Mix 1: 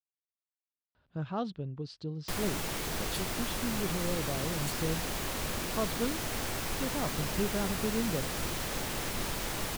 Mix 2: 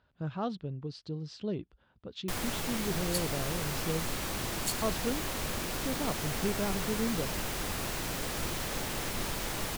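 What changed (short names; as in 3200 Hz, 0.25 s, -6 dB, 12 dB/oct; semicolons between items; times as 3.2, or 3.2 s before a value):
speech: entry -0.95 s; second sound +8.0 dB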